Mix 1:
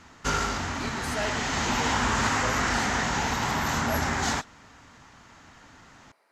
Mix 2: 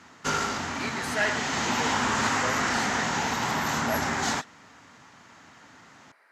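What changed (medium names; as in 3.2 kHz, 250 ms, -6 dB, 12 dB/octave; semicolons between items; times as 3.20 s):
speech: add peaking EQ 1.7 kHz +12 dB 1 oct; master: add high-pass 130 Hz 12 dB/octave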